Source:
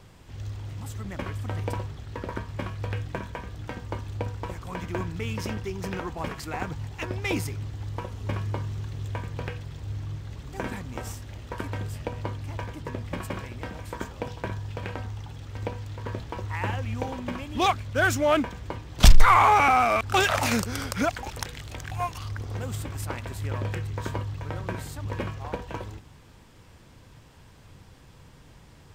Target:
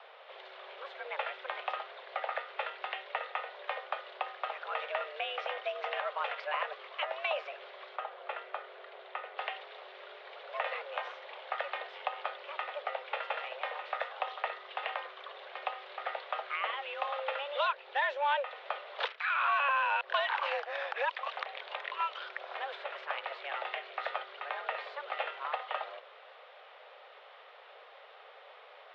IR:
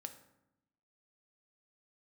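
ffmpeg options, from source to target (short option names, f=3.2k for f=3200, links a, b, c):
-filter_complex "[0:a]acrossover=split=930|2000[a][b][c];[a]acompressor=threshold=-36dB:ratio=4[d];[b]acompressor=threshold=-44dB:ratio=4[e];[c]acompressor=threshold=-43dB:ratio=4[f];[d][e][f]amix=inputs=3:normalize=0,highpass=f=240:t=q:w=0.5412,highpass=f=240:t=q:w=1.307,lowpass=f=3.4k:t=q:w=0.5176,lowpass=f=3.4k:t=q:w=0.7071,lowpass=f=3.4k:t=q:w=1.932,afreqshift=280,asettb=1/sr,asplit=3[g][h][i];[g]atrim=end=7.964[j];[h]atrim=start=7.96:end=9.38,asetpts=PTS-STARTPTS,afade=t=in:d=0.004:c=qsin,afade=t=out:st=1.416:d=0.004:c=qsin,highshelf=f=2.9k:g=-11[k];[i]atrim=start=9.376[l];[j][k]acrossfade=d=0.004:c1=hsin:c2=qsin[m];[m][l]acrossfade=d=0.004:c1=qsin:c2=hsin,volume=4dB"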